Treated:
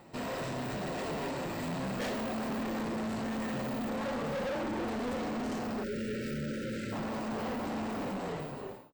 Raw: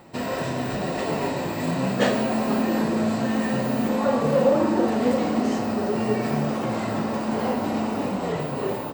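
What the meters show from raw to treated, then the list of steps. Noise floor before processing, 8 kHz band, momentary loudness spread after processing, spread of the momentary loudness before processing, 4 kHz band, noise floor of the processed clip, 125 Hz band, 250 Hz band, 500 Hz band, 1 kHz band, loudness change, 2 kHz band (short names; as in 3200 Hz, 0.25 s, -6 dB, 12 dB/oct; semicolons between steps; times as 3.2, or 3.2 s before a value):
-29 dBFS, -9.0 dB, 2 LU, 6 LU, -8.5 dB, -42 dBFS, -11.0 dB, -12.0 dB, -12.5 dB, -11.0 dB, -11.5 dB, -8.5 dB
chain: ending faded out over 0.78 s; tube stage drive 29 dB, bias 0.55; spectral delete 5.83–6.92, 600–1300 Hz; gain -3.5 dB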